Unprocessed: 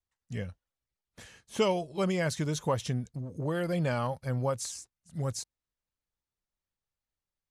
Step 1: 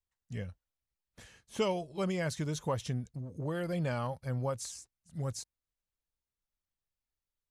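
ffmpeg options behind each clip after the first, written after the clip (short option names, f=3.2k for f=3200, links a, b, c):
-af "lowshelf=f=67:g=7,volume=-4.5dB"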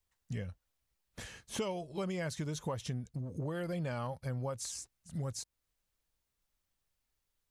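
-af "acompressor=threshold=-46dB:ratio=3,volume=8dB"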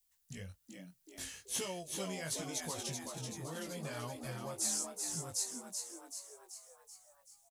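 -filter_complex "[0:a]flanger=delay=16:depth=5.1:speed=1.2,asplit=9[a][b][c][d][e][f][g][h][i];[b]adelay=382,afreqshift=87,volume=-5dB[j];[c]adelay=764,afreqshift=174,volume=-9.9dB[k];[d]adelay=1146,afreqshift=261,volume=-14.8dB[l];[e]adelay=1528,afreqshift=348,volume=-19.6dB[m];[f]adelay=1910,afreqshift=435,volume=-24.5dB[n];[g]adelay=2292,afreqshift=522,volume=-29.4dB[o];[h]adelay=2674,afreqshift=609,volume=-34.3dB[p];[i]adelay=3056,afreqshift=696,volume=-39.2dB[q];[a][j][k][l][m][n][o][p][q]amix=inputs=9:normalize=0,crystalizer=i=5.5:c=0,volume=-5dB"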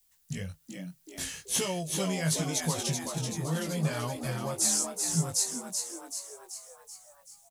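-af "equalizer=f=160:w=5.4:g=11.5,volume=8.5dB"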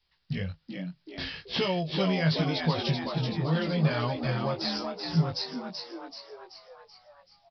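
-af "aresample=11025,aresample=44100,volume=4.5dB"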